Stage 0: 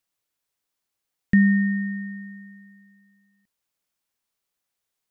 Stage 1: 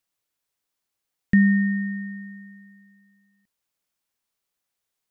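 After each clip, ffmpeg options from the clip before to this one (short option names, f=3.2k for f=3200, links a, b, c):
-af anull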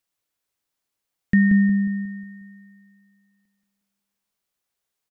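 -filter_complex "[0:a]asplit=2[a][b];[b]adelay=180,lowpass=f=1.5k:p=1,volume=-5dB,asplit=2[c][d];[d]adelay=180,lowpass=f=1.5k:p=1,volume=0.45,asplit=2[e][f];[f]adelay=180,lowpass=f=1.5k:p=1,volume=0.45,asplit=2[g][h];[h]adelay=180,lowpass=f=1.5k:p=1,volume=0.45,asplit=2[i][j];[j]adelay=180,lowpass=f=1.5k:p=1,volume=0.45,asplit=2[k][l];[l]adelay=180,lowpass=f=1.5k:p=1,volume=0.45[m];[a][c][e][g][i][k][m]amix=inputs=7:normalize=0"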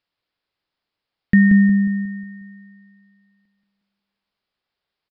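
-af "aresample=11025,aresample=44100,volume=4dB"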